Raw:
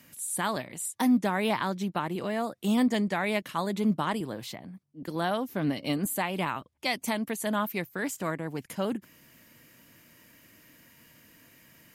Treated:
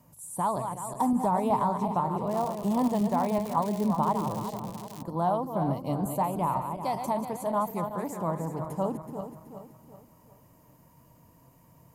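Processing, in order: regenerating reverse delay 0.188 s, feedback 64%, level -7 dB; EQ curve 150 Hz 0 dB, 220 Hz -10 dB, 350 Hz -10 dB, 980 Hz -1 dB, 1600 Hz -26 dB, 3400 Hz -30 dB, 7000 Hz -24 dB; 2.27–5.01 crackle 180/s -44 dBFS; high shelf 2600 Hz +10 dB; notches 50/100/150 Hz; gain +6.5 dB

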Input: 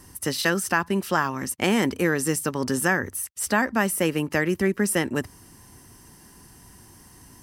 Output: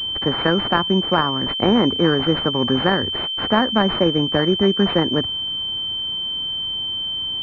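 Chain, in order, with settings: vibrato 1.8 Hz 60 cents; pulse-width modulation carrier 3100 Hz; gain +6 dB

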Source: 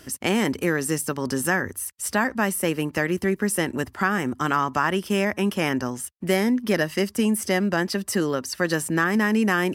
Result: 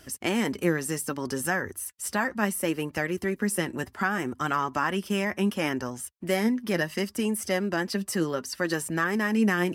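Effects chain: flange 0.67 Hz, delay 1.2 ms, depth 5 ms, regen +55%

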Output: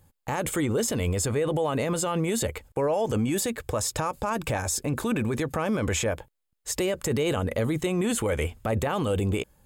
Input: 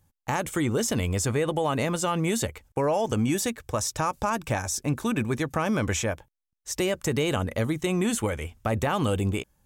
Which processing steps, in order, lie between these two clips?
bell 480 Hz +5 dB 0.67 oct; notch 5800 Hz, Q 6.1; limiter -24 dBFS, peak gain reduction 12 dB; gain +6 dB

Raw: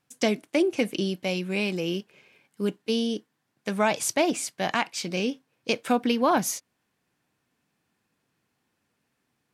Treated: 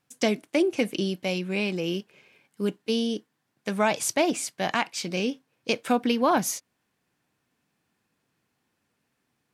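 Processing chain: 1.38–1.84 high shelf 8500 Hz -7.5 dB

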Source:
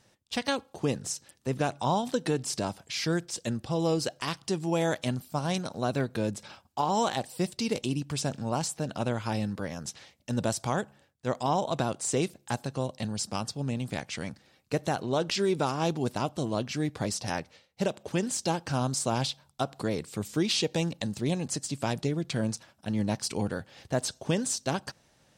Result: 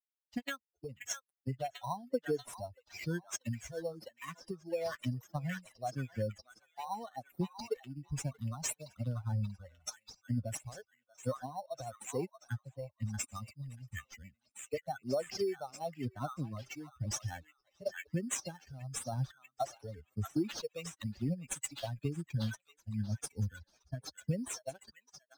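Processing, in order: per-bin expansion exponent 3; dynamic EQ 220 Hz, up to -5 dB, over -46 dBFS, Q 1; compressor 4:1, threshold -46 dBFS, peak gain reduction 15 dB; on a send: delay with a stepping band-pass 0.636 s, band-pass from 1600 Hz, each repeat 0.7 oct, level -2 dB; on the sum: phaser stages 4, 1 Hz, lowest notch 190–4200 Hz; in parallel at -4.5 dB: sample-and-hold 9×; on the sum: three-band expander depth 40%; gain +7.5 dB

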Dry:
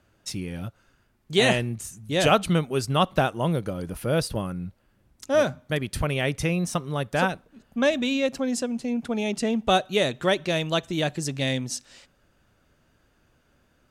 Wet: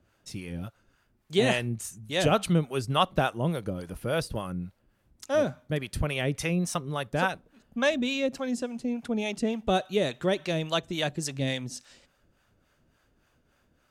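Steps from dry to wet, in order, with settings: harmonic tremolo 3.5 Hz, depth 70%, crossover 560 Hz

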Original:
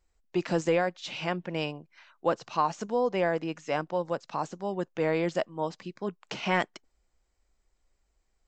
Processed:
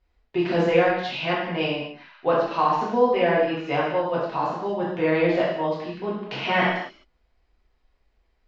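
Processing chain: LPF 4300 Hz 24 dB/oct; non-linear reverb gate 0.29 s falling, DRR -7 dB

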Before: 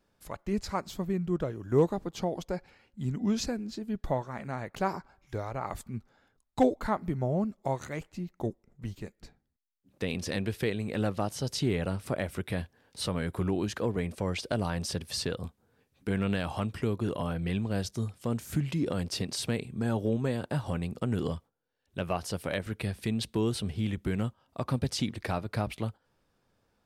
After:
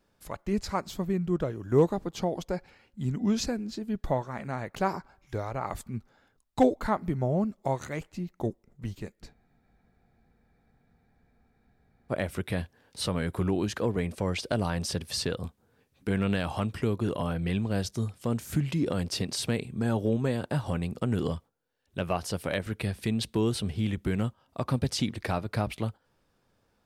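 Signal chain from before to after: spectral freeze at 9.35, 2.77 s; gain +2 dB

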